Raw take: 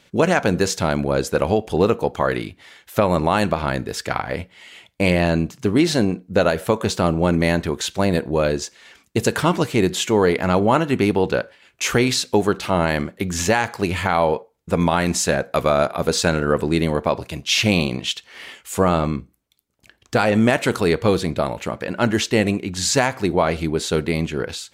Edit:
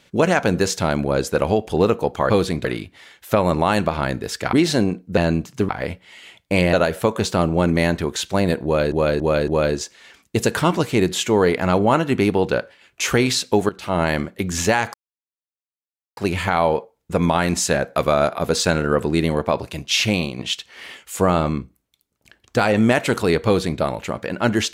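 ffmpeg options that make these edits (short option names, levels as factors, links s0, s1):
-filter_complex "[0:a]asplit=13[s0][s1][s2][s3][s4][s5][s6][s7][s8][s9][s10][s11][s12];[s0]atrim=end=2.302[s13];[s1]atrim=start=21.038:end=21.392[s14];[s2]atrim=start=2.298:end=4.182[s15];[s3]atrim=start=5.738:end=6.382[s16];[s4]atrim=start=5.218:end=5.742[s17];[s5]atrim=start=4.178:end=5.222[s18];[s6]atrim=start=6.378:end=8.572[s19];[s7]atrim=start=8.288:end=8.572[s20];[s8]atrim=start=8.288:end=8.572[s21];[s9]atrim=start=8.288:end=12.5,asetpts=PTS-STARTPTS,afade=t=out:st=4.208:d=0.004:c=hsin:silence=0.16788[s22];[s10]atrim=start=12.5:end=13.75,asetpts=PTS-STARTPTS,afade=t=in:d=0.34:silence=0.16788,afade=t=out:st=1.246:d=0.004:c=hsin,apad=pad_dur=1.23[s23];[s11]atrim=start=13.75:end=17.96,asetpts=PTS-STARTPTS,afade=t=in:d=0.004:c=hsin,afade=t=out:st=3.77:d=0.44:silence=0.421697[s24];[s12]atrim=start=17.96,asetpts=PTS-STARTPTS,afade=t=in:d=0.004:c=hsin:silence=0.421697[s25];[s13][s14]acrossfade=d=0.004:c1=hsin:c2=hsin[s26];[s26][s15]acrossfade=d=0.004:c1=hsin:c2=hsin[s27];[s27][s16]acrossfade=d=0.004:c1=hsin:c2=hsin[s28];[s28][s17]acrossfade=d=0.004:c1=hsin:c2=hsin[s29];[s29][s18]acrossfade=d=0.004:c1=hsin:c2=hsin[s30];[s30][s19]acrossfade=d=0.004:c1=hsin:c2=hsin[s31];[s31][s20]acrossfade=d=0.004:c1=hsin:c2=hsin[s32];[s32][s21]acrossfade=d=0.004:c1=hsin:c2=hsin[s33];[s22][s23][s24][s25]concat=n=4:v=0:a=1[s34];[s33][s34]acrossfade=d=0.004:c1=hsin:c2=hsin"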